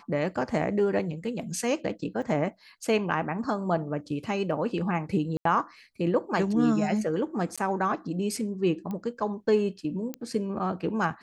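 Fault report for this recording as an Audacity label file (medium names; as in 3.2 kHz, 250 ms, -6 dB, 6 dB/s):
2.220000	2.230000	dropout 5.4 ms
5.370000	5.450000	dropout 83 ms
7.560000	7.580000	dropout 16 ms
8.910000	8.910000	pop -23 dBFS
10.140000	10.140000	pop -19 dBFS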